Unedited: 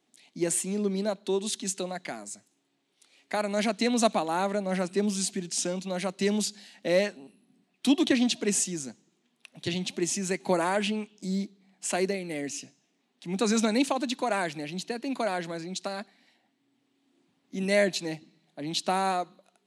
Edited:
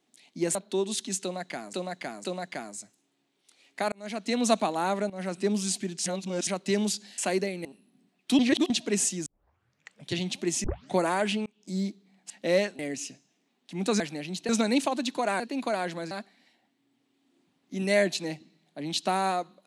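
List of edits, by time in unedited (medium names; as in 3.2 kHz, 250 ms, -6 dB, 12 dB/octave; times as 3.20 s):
0.55–1.10 s: delete
1.77–2.28 s: loop, 3 plays
3.45–3.97 s: fade in
4.63–4.95 s: fade in, from -14 dB
5.59–6.00 s: reverse
6.71–7.20 s: swap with 11.85–12.32 s
7.94–8.25 s: reverse
8.81 s: tape start 0.84 s
10.19 s: tape start 0.31 s
11.01–11.31 s: fade in
14.44–14.93 s: move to 13.53 s
15.64–15.92 s: delete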